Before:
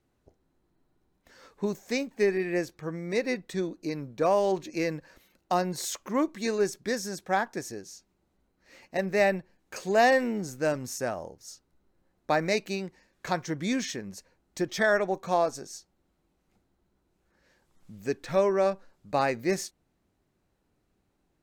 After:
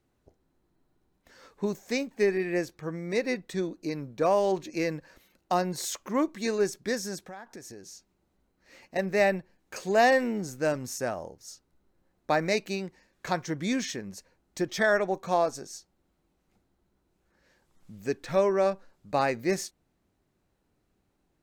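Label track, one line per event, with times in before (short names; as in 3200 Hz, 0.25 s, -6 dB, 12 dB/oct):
7.190000	8.960000	compressor 5:1, threshold -41 dBFS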